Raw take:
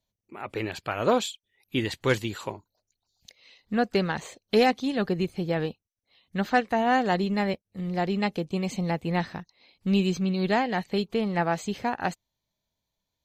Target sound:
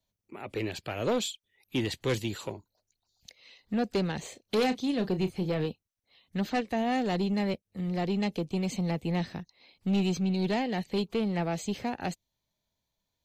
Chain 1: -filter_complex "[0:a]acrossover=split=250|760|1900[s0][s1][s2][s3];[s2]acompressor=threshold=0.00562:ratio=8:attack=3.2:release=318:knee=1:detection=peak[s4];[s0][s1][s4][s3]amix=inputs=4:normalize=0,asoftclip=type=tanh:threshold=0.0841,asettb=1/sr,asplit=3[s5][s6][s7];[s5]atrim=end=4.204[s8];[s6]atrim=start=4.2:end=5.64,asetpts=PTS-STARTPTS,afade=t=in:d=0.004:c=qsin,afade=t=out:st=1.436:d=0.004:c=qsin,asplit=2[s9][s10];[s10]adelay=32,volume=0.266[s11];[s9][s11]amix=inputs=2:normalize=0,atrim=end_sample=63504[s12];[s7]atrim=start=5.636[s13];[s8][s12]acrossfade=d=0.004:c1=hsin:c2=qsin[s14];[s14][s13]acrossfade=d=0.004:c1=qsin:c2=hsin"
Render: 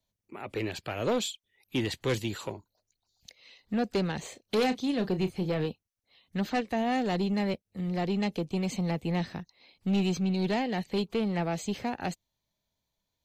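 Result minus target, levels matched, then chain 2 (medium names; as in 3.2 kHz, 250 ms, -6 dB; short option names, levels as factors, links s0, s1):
compression: peak gain reduction -5.5 dB
-filter_complex "[0:a]acrossover=split=250|760|1900[s0][s1][s2][s3];[s2]acompressor=threshold=0.00266:ratio=8:attack=3.2:release=318:knee=1:detection=peak[s4];[s0][s1][s4][s3]amix=inputs=4:normalize=0,asoftclip=type=tanh:threshold=0.0841,asettb=1/sr,asplit=3[s5][s6][s7];[s5]atrim=end=4.204[s8];[s6]atrim=start=4.2:end=5.64,asetpts=PTS-STARTPTS,afade=t=in:d=0.004:c=qsin,afade=t=out:st=1.436:d=0.004:c=qsin,asplit=2[s9][s10];[s10]adelay=32,volume=0.266[s11];[s9][s11]amix=inputs=2:normalize=0,atrim=end_sample=63504[s12];[s7]atrim=start=5.636[s13];[s8][s12]acrossfade=d=0.004:c1=hsin:c2=qsin[s14];[s14][s13]acrossfade=d=0.004:c1=qsin:c2=hsin"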